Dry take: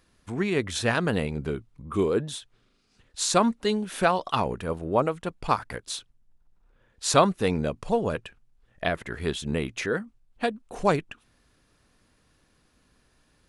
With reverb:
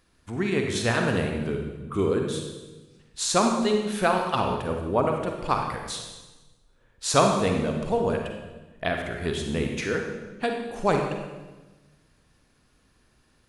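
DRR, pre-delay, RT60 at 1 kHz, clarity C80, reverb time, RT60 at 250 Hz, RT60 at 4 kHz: 2.5 dB, 39 ms, 1.1 s, 5.5 dB, 1.2 s, 1.5 s, 1.1 s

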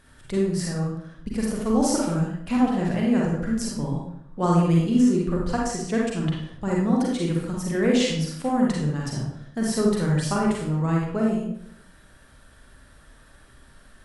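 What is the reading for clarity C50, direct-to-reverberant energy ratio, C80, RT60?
0.0 dB, -3.5 dB, 5.0 dB, 0.70 s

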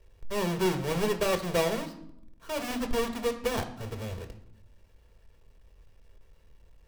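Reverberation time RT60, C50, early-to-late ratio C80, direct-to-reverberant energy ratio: 0.75 s, 12.0 dB, 15.0 dB, 6.5 dB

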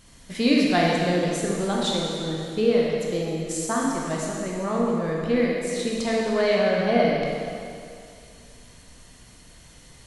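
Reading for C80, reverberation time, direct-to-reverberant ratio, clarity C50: 0.5 dB, 2.4 s, -3.5 dB, -1.5 dB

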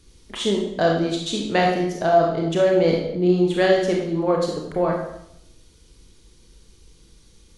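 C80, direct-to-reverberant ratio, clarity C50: 6.0 dB, -1.0 dB, 3.0 dB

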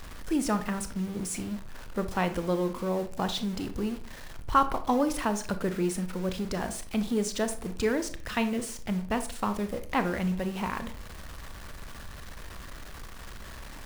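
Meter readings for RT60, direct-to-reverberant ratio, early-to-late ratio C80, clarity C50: 0.45 s, 9.0 dB, 17.5 dB, 12.5 dB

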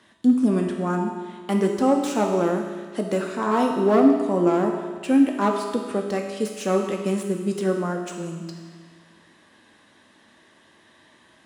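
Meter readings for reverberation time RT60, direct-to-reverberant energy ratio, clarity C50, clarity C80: 1.7 s, 1.5 dB, 4.0 dB, 5.5 dB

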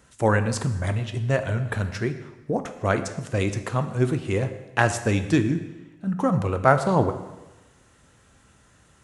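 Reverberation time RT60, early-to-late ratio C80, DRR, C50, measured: 1.1 s, 12.5 dB, 8.5 dB, 11.0 dB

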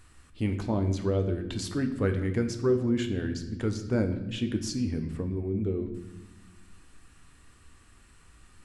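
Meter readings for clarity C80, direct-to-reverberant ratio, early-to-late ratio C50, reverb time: 12.0 dB, 6.0 dB, 10.0 dB, 1.0 s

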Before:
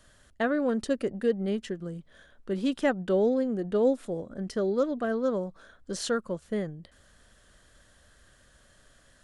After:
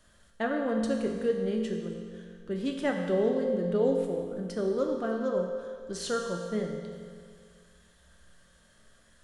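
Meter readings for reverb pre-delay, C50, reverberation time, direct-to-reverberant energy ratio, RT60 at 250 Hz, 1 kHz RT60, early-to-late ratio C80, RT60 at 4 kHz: 4 ms, 4.0 dB, 2.0 s, 1.5 dB, 2.0 s, 2.0 s, 5.0 dB, 1.9 s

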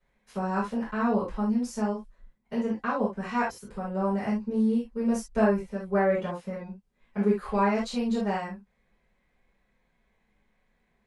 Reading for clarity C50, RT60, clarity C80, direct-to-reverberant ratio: 3.5 dB, no single decay rate, 15.0 dB, -10.5 dB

